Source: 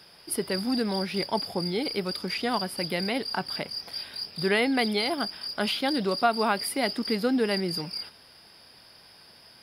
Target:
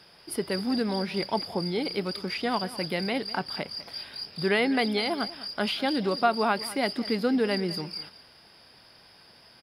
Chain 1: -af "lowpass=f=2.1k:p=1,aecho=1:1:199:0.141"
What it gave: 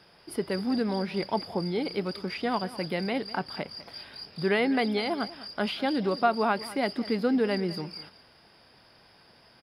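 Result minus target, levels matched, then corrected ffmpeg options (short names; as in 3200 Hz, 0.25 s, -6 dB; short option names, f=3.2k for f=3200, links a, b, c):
4000 Hz band -4.0 dB
-af "lowpass=f=5.3k:p=1,aecho=1:1:199:0.141"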